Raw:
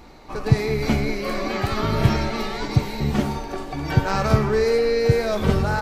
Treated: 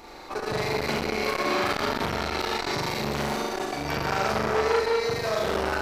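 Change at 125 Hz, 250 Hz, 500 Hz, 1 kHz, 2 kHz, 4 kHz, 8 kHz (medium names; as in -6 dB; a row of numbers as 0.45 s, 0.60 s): -14.5 dB, -8.0 dB, -4.0 dB, 0.0 dB, 0.0 dB, +1.0 dB, +1.0 dB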